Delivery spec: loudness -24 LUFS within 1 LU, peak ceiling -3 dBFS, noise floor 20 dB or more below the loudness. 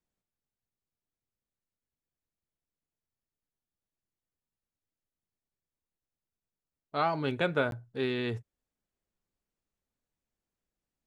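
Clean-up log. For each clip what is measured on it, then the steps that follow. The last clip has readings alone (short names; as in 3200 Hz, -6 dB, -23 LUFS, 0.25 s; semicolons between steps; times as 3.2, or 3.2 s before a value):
dropouts 1; longest dropout 12 ms; loudness -31.5 LUFS; peak -14.5 dBFS; loudness target -24.0 LUFS
-> interpolate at 7.71, 12 ms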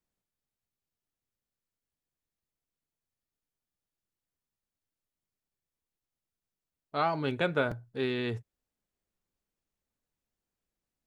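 dropouts 0; loudness -31.5 LUFS; peak -14.5 dBFS; loudness target -24.0 LUFS
-> gain +7.5 dB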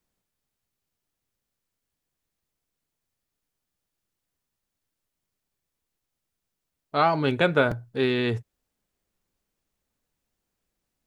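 loudness -24.0 LUFS; peak -7.0 dBFS; noise floor -84 dBFS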